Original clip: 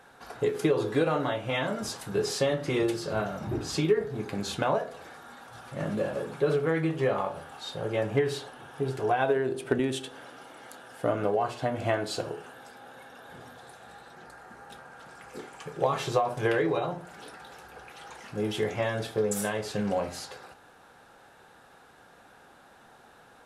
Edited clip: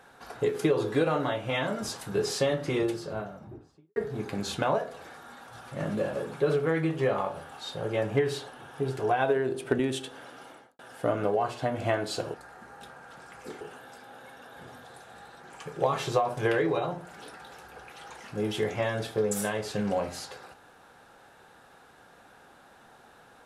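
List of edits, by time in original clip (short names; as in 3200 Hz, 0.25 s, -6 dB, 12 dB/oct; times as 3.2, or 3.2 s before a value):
2.53–3.96 studio fade out
10.48–10.79 studio fade out
14.23–15.5 move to 12.34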